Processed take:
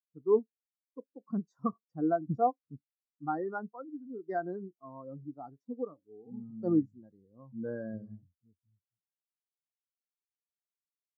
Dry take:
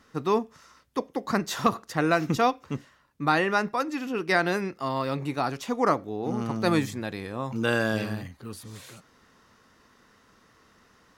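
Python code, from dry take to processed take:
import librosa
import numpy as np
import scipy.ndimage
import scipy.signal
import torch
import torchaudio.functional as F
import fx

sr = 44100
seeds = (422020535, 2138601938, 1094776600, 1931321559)

y = fx.hpss(x, sr, part='percussive', gain_db=-11, at=(5.67, 6.59), fade=0.02)
y = fx.env_phaser(y, sr, low_hz=270.0, high_hz=2800.0, full_db=-29.5)
y = fx.spectral_expand(y, sr, expansion=2.5)
y = y * 10.0 ** (-5.5 / 20.0)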